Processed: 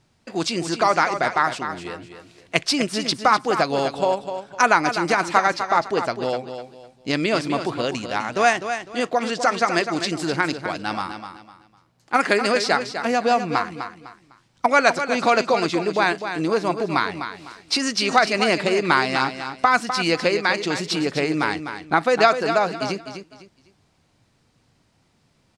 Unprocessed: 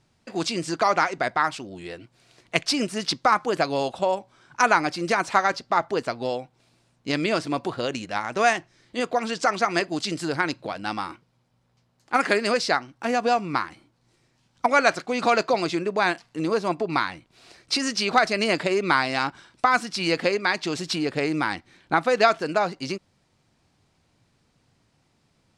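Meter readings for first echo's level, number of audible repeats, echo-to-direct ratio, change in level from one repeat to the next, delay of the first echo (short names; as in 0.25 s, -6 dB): -9.0 dB, 3, -8.5 dB, -11.0 dB, 0.252 s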